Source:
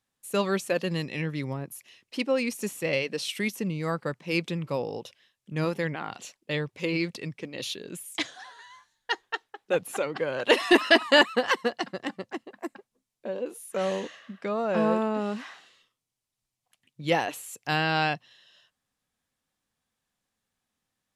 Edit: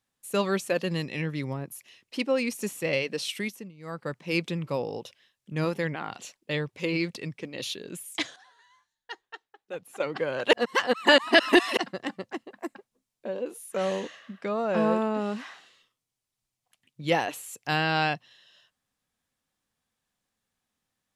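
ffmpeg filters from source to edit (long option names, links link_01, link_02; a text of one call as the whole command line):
ffmpeg -i in.wav -filter_complex "[0:a]asplit=7[link_01][link_02][link_03][link_04][link_05][link_06][link_07];[link_01]atrim=end=3.72,asetpts=PTS-STARTPTS,afade=type=out:start_time=3.3:duration=0.42:silence=0.1[link_08];[link_02]atrim=start=3.72:end=3.77,asetpts=PTS-STARTPTS,volume=-20dB[link_09];[link_03]atrim=start=3.77:end=8.362,asetpts=PTS-STARTPTS,afade=type=in:duration=0.42:silence=0.1[link_10];[link_04]atrim=start=8.358:end=10.002,asetpts=PTS-STARTPTS,volume=-11.5dB[link_11];[link_05]atrim=start=9.998:end=10.532[link_12];[link_06]atrim=start=10.528:end=11.772,asetpts=PTS-STARTPTS,areverse[link_13];[link_07]atrim=start=11.768[link_14];[link_08][link_09][link_10]concat=n=3:v=0:a=1[link_15];[link_15][link_11]acrossfade=duration=0.004:curve1=hsin:curve2=hsin[link_16];[link_16][link_12]acrossfade=duration=0.004:curve1=hsin:curve2=hsin[link_17];[link_17][link_13]acrossfade=duration=0.004:curve1=hsin:curve2=hsin[link_18];[link_18][link_14]acrossfade=duration=0.004:curve1=hsin:curve2=hsin" out.wav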